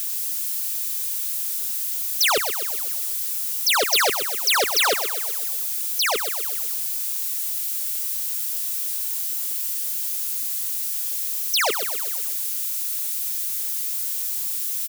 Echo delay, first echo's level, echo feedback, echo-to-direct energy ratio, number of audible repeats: 0.126 s, -9.0 dB, 54%, -7.5 dB, 5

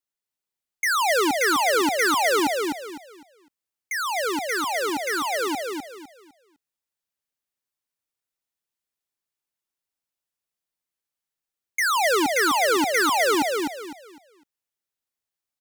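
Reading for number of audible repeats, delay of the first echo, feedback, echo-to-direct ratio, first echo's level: 3, 0.253 s, 29%, -3.0 dB, -3.5 dB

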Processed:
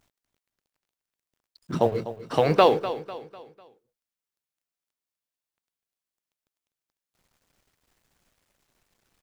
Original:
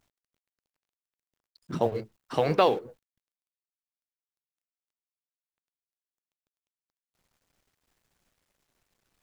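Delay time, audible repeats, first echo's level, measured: 0.249 s, 3, -13.5 dB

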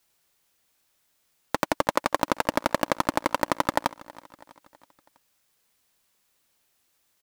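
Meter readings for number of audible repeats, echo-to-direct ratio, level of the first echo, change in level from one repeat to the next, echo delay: 3, -19.5 dB, -21.0 dB, -5.5 dB, 0.325 s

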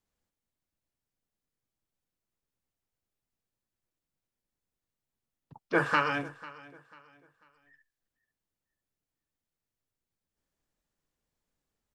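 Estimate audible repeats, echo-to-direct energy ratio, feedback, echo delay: 2, -19.0 dB, 33%, 0.494 s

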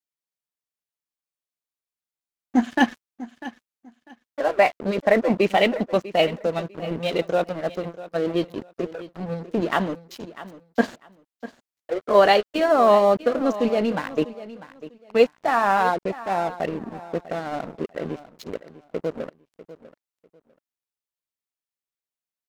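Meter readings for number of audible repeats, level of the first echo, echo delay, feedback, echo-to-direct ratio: 2, -16.0 dB, 0.647 s, 22%, -16.0 dB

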